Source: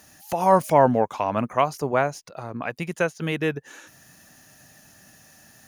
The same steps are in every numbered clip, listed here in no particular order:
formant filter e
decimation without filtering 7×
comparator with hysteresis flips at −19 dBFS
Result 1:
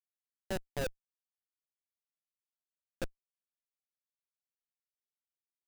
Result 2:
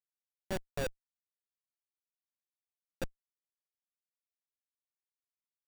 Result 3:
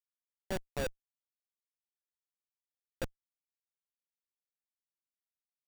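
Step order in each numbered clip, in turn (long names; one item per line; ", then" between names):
decimation without filtering, then formant filter, then comparator with hysteresis
formant filter, then decimation without filtering, then comparator with hysteresis
formant filter, then comparator with hysteresis, then decimation without filtering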